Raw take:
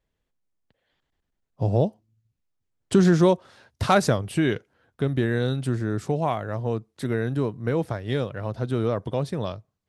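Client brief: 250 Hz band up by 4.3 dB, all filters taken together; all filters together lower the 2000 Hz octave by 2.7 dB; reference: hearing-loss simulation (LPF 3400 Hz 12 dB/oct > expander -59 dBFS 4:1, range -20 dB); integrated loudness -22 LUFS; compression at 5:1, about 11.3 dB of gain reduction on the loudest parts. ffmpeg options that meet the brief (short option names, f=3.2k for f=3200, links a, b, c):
-af "equalizer=f=250:t=o:g=6.5,equalizer=f=2k:t=o:g=-3.5,acompressor=threshold=-24dB:ratio=5,lowpass=3.4k,agate=range=-20dB:threshold=-59dB:ratio=4,volume=8dB"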